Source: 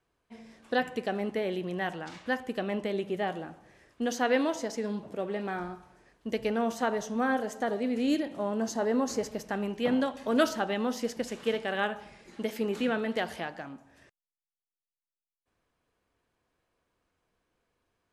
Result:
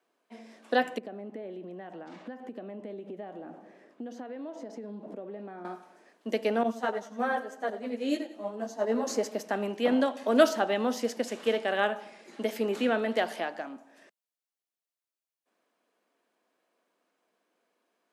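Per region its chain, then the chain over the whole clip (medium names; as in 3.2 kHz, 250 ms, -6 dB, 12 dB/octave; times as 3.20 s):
0.98–5.65 s: compression 8:1, threshold -44 dBFS + tilt EQ -3.5 dB/octave
6.63–9.07 s: gate -30 dBFS, range -9 dB + feedback delay 93 ms, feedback 43%, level -14.5 dB + three-phase chorus
whole clip: steep high-pass 210 Hz; peaking EQ 640 Hz +5 dB 0.39 oct; trim +1.5 dB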